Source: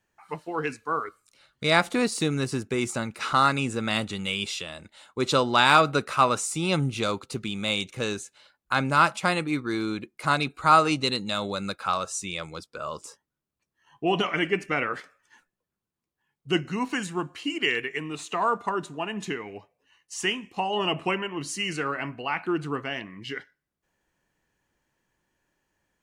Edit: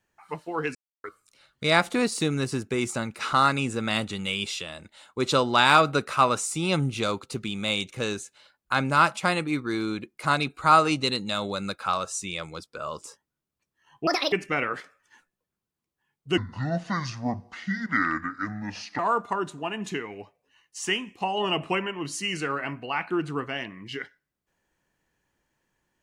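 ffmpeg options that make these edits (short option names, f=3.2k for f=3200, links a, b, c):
-filter_complex "[0:a]asplit=7[a][b][c][d][e][f][g];[a]atrim=end=0.75,asetpts=PTS-STARTPTS,afade=t=out:st=0.746:d=0.004:c=hsin[h];[b]atrim=start=0.75:end=1.04,asetpts=PTS-STARTPTS,volume=0[i];[c]atrim=start=1.04:end=14.074,asetpts=PTS-STARTPTS,afade=t=in:d=0.004:c=hsin[j];[d]atrim=start=14.07:end=14.52,asetpts=PTS-STARTPTS,asetrate=78498,aresample=44100[k];[e]atrim=start=14.516:end=16.574[l];[f]atrim=start=16.57:end=18.35,asetpts=PTS-STARTPTS,asetrate=29988,aresample=44100,atrim=end_sample=115438,asetpts=PTS-STARTPTS[m];[g]atrim=start=18.346[n];[h][i][j]concat=n=3:v=0:a=1[o];[o][k]acrossfade=d=0.004:c1=hsin:c2=hsin[p];[p][l]acrossfade=d=0.004:c1=hsin:c2=hsin[q];[q][m]acrossfade=d=0.004:c1=hsin:c2=hsin[r];[r][n]acrossfade=d=0.004:c1=hsin:c2=hsin"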